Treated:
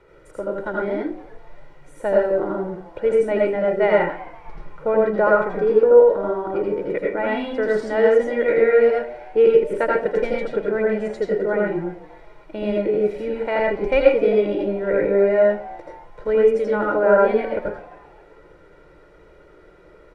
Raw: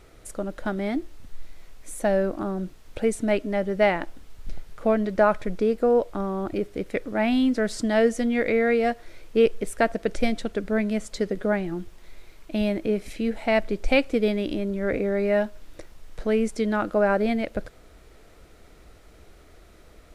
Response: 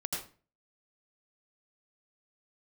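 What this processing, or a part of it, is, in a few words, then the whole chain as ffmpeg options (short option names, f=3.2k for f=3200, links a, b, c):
microphone above a desk: -filter_complex "[0:a]acrossover=split=150 2300:gain=0.2 1 0.2[a][b][c];[a][b][c]amix=inputs=3:normalize=0,aecho=1:1:2.1:0.67[d];[1:a]atrim=start_sample=2205[e];[d][e]afir=irnorm=-1:irlink=0,asplit=4[f][g][h][i];[g]adelay=263,afreqshift=140,volume=-21dB[j];[h]adelay=526,afreqshift=280,volume=-29dB[k];[i]adelay=789,afreqshift=420,volume=-36.9dB[l];[f][j][k][l]amix=inputs=4:normalize=0,highshelf=f=8.3k:g=-11.5,volume=1.5dB"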